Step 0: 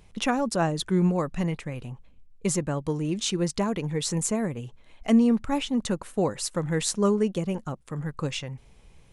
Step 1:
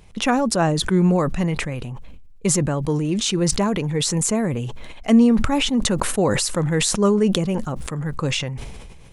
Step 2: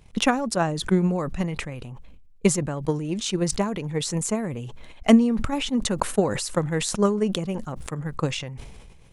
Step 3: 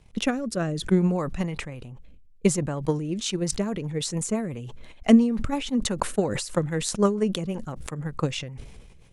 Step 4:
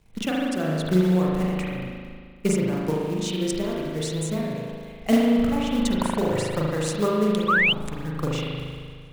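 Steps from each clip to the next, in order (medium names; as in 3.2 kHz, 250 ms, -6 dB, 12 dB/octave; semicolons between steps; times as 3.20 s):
decay stretcher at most 30 dB/s; trim +5 dB
transient shaper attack +11 dB, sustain -2 dB; trim -7 dB
rotary cabinet horn 0.6 Hz, later 6 Hz, at 2.75 s
short-mantissa float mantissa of 2-bit; spring tank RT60 1.9 s, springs 38 ms, chirp 35 ms, DRR -4.5 dB; painted sound rise, 7.48–7.73 s, 1.1–3.2 kHz -15 dBFS; trim -4 dB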